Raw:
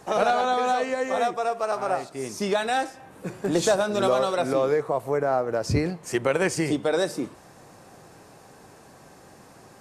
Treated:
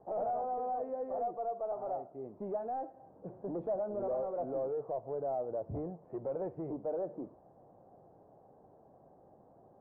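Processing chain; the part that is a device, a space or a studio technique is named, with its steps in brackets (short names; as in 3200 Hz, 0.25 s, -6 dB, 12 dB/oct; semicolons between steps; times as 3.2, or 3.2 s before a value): overdriven synthesiser ladder filter (soft clip -22 dBFS, distortion -11 dB; ladder low-pass 820 Hz, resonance 45%); gain -4 dB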